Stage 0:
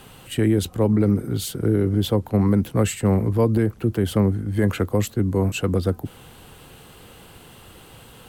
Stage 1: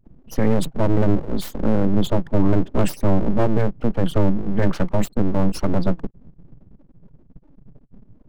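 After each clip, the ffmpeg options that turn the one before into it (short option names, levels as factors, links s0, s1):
-af "afftfilt=real='re*gte(hypot(re,im),0.0282)':imag='im*gte(hypot(re,im),0.0282)':win_size=1024:overlap=0.75,equalizer=f=67:t=o:w=1.4:g=13.5,aeval=exprs='abs(val(0))':c=same"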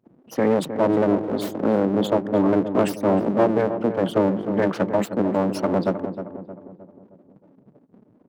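-filter_complex "[0:a]highpass=280,highshelf=f=2600:g=-8,asplit=2[s0][s1];[s1]adelay=311,lowpass=f=1300:p=1,volume=0.355,asplit=2[s2][s3];[s3]adelay=311,lowpass=f=1300:p=1,volume=0.5,asplit=2[s4][s5];[s5]adelay=311,lowpass=f=1300:p=1,volume=0.5,asplit=2[s6][s7];[s7]adelay=311,lowpass=f=1300:p=1,volume=0.5,asplit=2[s8][s9];[s9]adelay=311,lowpass=f=1300:p=1,volume=0.5,asplit=2[s10][s11];[s11]adelay=311,lowpass=f=1300:p=1,volume=0.5[s12];[s2][s4][s6][s8][s10][s12]amix=inputs=6:normalize=0[s13];[s0][s13]amix=inputs=2:normalize=0,volume=1.58"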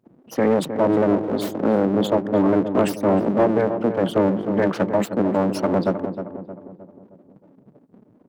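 -af "acontrast=61,volume=0.596"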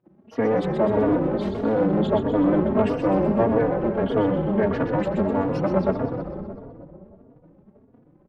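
-filter_complex "[0:a]lowpass=2900,asplit=2[s0][s1];[s1]asplit=8[s2][s3][s4][s5][s6][s7][s8][s9];[s2]adelay=125,afreqshift=-36,volume=0.501[s10];[s3]adelay=250,afreqshift=-72,volume=0.295[s11];[s4]adelay=375,afreqshift=-108,volume=0.174[s12];[s5]adelay=500,afreqshift=-144,volume=0.104[s13];[s6]adelay=625,afreqshift=-180,volume=0.061[s14];[s7]adelay=750,afreqshift=-216,volume=0.0359[s15];[s8]adelay=875,afreqshift=-252,volume=0.0211[s16];[s9]adelay=1000,afreqshift=-288,volume=0.0124[s17];[s10][s11][s12][s13][s14][s15][s16][s17]amix=inputs=8:normalize=0[s18];[s0][s18]amix=inputs=2:normalize=0,asplit=2[s19][s20];[s20]adelay=3.5,afreqshift=1.6[s21];[s19][s21]amix=inputs=2:normalize=1"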